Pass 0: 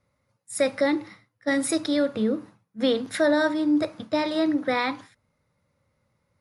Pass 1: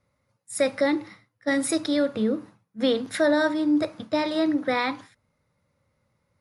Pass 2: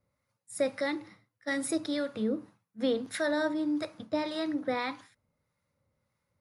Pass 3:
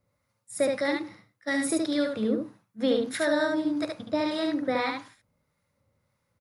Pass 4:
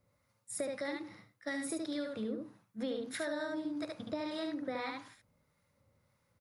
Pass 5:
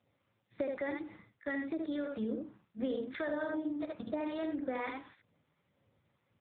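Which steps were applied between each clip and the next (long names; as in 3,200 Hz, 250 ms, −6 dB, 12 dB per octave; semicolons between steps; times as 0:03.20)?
no processing that can be heard
high-shelf EQ 8,900 Hz +4 dB; two-band tremolo in antiphase 1.7 Hz, depth 50%, crossover 880 Hz; level −5 dB
single-tap delay 72 ms −3.5 dB; level +3 dB
downward compressor 3 to 1, threshold −39 dBFS, peak gain reduction 14 dB
level +2.5 dB; AMR narrowband 6.7 kbit/s 8,000 Hz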